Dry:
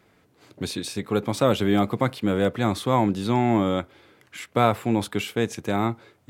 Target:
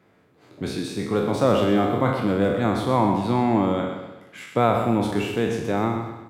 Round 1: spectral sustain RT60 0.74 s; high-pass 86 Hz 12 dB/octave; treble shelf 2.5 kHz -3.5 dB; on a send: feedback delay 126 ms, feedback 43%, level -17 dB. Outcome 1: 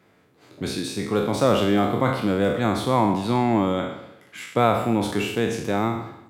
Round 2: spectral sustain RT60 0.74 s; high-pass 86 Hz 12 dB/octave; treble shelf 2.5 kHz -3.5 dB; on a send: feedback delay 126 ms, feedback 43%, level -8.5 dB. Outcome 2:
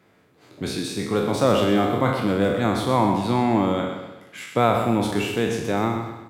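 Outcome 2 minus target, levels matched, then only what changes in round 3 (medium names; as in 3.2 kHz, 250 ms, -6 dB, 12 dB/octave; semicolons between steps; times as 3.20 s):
4 kHz band +3.5 dB
change: treble shelf 2.5 kHz -9.5 dB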